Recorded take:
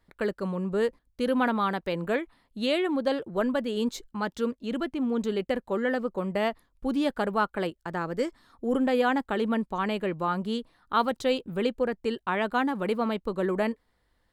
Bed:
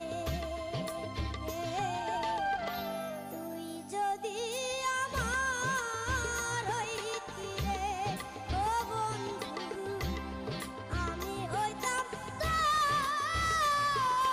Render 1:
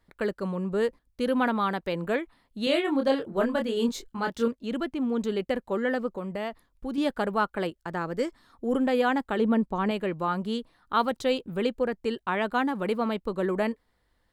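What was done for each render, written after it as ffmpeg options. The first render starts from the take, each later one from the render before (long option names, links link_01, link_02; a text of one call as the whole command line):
ffmpeg -i in.wav -filter_complex "[0:a]asettb=1/sr,asplit=3[link_01][link_02][link_03];[link_01]atrim=end=2.644[link_04];[link_02]atrim=start=2.64:end=4.48,asetpts=PTS-STARTPTS,afade=type=in:duration=0.004:curve=qsin,afade=type=out:start_time=1.836:duration=0.004:curve=qsin,asplit=2[link_05][link_06];[link_06]adelay=26,volume=-4dB[link_07];[link_05][link_07]amix=inputs=2:normalize=0,atrim=end_sample=81144[link_08];[link_03]atrim=start=4.476[link_09];[link_04][link_08]acrossfade=duration=0.004:curve1=hsin:curve2=qsin[link_10];[link_10][link_09]acrossfade=duration=0.004:curve1=qsin:curve2=hsin,asettb=1/sr,asplit=3[link_11][link_12][link_13];[link_11]atrim=end=6.154[link_14];[link_12]atrim=start=6.15:end=6.98,asetpts=PTS-STARTPTS,afade=type=in:duration=0.004:curve=qsin,afade=type=out:start_time=0.826:duration=0.004:curve=qsin,acompressor=threshold=-32dB:ratio=2:attack=3.2:release=140:knee=1:detection=peak[link_15];[link_13]atrim=start=6.976[link_16];[link_14][link_15]acrossfade=duration=0.004:curve1=hsin:curve2=qsin[link_17];[link_17][link_16]acrossfade=duration=0.004:curve1=qsin:curve2=hsin,asettb=1/sr,asplit=3[link_18][link_19][link_20];[link_18]atrim=end=9.394[link_21];[link_19]atrim=start=9.39:end=9.91,asetpts=PTS-STARTPTS,afade=type=in:duration=0.004:curve=qsin,afade=type=out:start_time=0.516:duration=0.004:curve=qsin,tiltshelf=frequency=970:gain=4.5[link_22];[link_20]atrim=start=9.906[link_23];[link_21][link_22]acrossfade=duration=0.004:curve1=hsin:curve2=qsin[link_24];[link_24][link_23]acrossfade=duration=0.004:curve1=qsin:curve2=hsin" out.wav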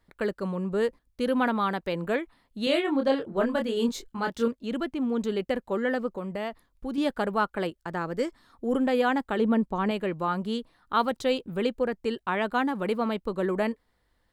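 ffmpeg -i in.wav -filter_complex "[0:a]asettb=1/sr,asplit=3[link_01][link_02][link_03];[link_01]atrim=end=2.844[link_04];[link_02]atrim=start=2.84:end=3.47,asetpts=PTS-STARTPTS,afade=type=in:duration=0.004:curve=qsin,afade=type=out:start_time=0.626:duration=0.004:curve=qsin,highshelf=frequency=7900:gain=-8[link_05];[link_03]atrim=start=3.466[link_06];[link_04][link_05]acrossfade=duration=0.004:curve1=hsin:curve2=qsin[link_07];[link_07][link_06]acrossfade=duration=0.004:curve1=qsin:curve2=hsin" out.wav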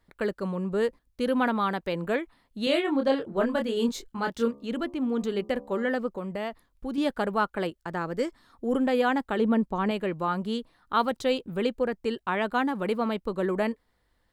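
ffmpeg -i in.wav -filter_complex "[0:a]asettb=1/sr,asplit=3[link_01][link_02][link_03];[link_01]atrim=end=4.454[link_04];[link_02]atrim=start=4.45:end=5.9,asetpts=PTS-STARTPTS,afade=type=in:duration=0.004:curve=qsin,afade=type=out:start_time=1.446:duration=0.004:curve=qsin,bandreject=frequency=70.36:width_type=h:width=4,bandreject=frequency=140.72:width_type=h:width=4,bandreject=frequency=211.08:width_type=h:width=4,bandreject=frequency=281.44:width_type=h:width=4,bandreject=frequency=351.8:width_type=h:width=4,bandreject=frequency=422.16:width_type=h:width=4,bandreject=frequency=492.52:width_type=h:width=4,bandreject=frequency=562.88:width_type=h:width=4,bandreject=frequency=633.24:width_type=h:width=4,bandreject=frequency=703.6:width_type=h:width=4,bandreject=frequency=773.96:width_type=h:width=4,bandreject=frequency=844.32:width_type=h:width=4,bandreject=frequency=914.68:width_type=h:width=4,bandreject=frequency=985.04:width_type=h:width=4,bandreject=frequency=1055.4:width_type=h:width=4,bandreject=frequency=1125.76:width_type=h:width=4,bandreject=frequency=1196.12:width_type=h:width=4[link_05];[link_03]atrim=start=5.896[link_06];[link_04][link_05]acrossfade=duration=0.004:curve1=hsin:curve2=qsin[link_07];[link_07][link_06]acrossfade=duration=0.004:curve1=qsin:curve2=hsin" out.wav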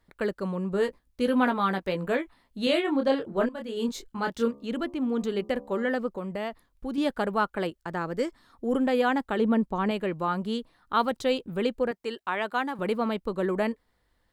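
ffmpeg -i in.wav -filter_complex "[0:a]asettb=1/sr,asplit=3[link_01][link_02][link_03];[link_01]atrim=end=0.724[link_04];[link_02]atrim=start=0.72:end=2.73,asetpts=PTS-STARTPTS,afade=type=in:duration=0.004:curve=qsin,afade=type=out:start_time=2.006:duration=0.004:curve=qsin,asplit=2[link_05][link_06];[link_06]adelay=16,volume=-7dB[link_07];[link_05][link_07]amix=inputs=2:normalize=0,atrim=end_sample=88641[link_08];[link_03]atrim=start=2.726[link_09];[link_04][link_08]acrossfade=duration=0.004:curve1=hsin:curve2=qsin[link_10];[link_10][link_09]acrossfade=duration=0.004:curve1=qsin:curve2=hsin,asettb=1/sr,asplit=3[link_11][link_12][link_13];[link_11]atrim=end=11.914[link_14];[link_12]atrim=start=11.91:end=12.79,asetpts=PTS-STARTPTS,afade=type=in:duration=0.004:curve=qsin,afade=type=out:start_time=0.876:duration=0.004:curve=qsin,highpass=frequency=510:poles=1[link_15];[link_13]atrim=start=12.786[link_16];[link_14][link_15]acrossfade=duration=0.004:curve1=hsin:curve2=qsin[link_17];[link_17][link_16]acrossfade=duration=0.004:curve1=qsin:curve2=hsin,asplit=2[link_18][link_19];[link_18]atrim=end=3.49,asetpts=PTS-STARTPTS,afade=type=out:start_time=3.486:duration=0.004:curve=hsin:silence=0.16788[link_20];[link_19]atrim=start=3.49,asetpts=PTS-STARTPTS,afade=type=in:duration=0.77:curve=qsin:silence=0.16788[link_21];[link_20][link_21]concat=n=2:v=0:a=1" out.wav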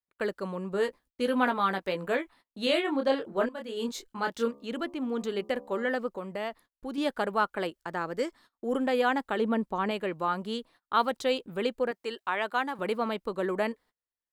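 ffmpeg -i in.wav -af "agate=range=-28dB:threshold=-51dB:ratio=16:detection=peak,lowshelf=frequency=200:gain=-12" out.wav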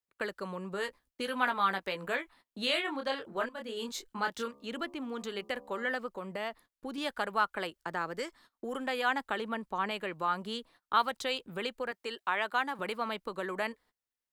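ffmpeg -i in.wav -filter_complex "[0:a]acrossover=split=110|830[link_01][link_02][link_03];[link_01]alimiter=level_in=34.5dB:limit=-24dB:level=0:latency=1,volume=-34.5dB[link_04];[link_02]acompressor=threshold=-38dB:ratio=6[link_05];[link_04][link_05][link_03]amix=inputs=3:normalize=0" out.wav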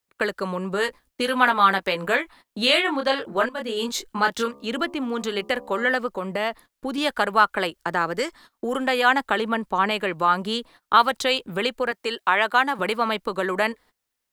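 ffmpeg -i in.wav -af "volume=11.5dB,alimiter=limit=-3dB:level=0:latency=1" out.wav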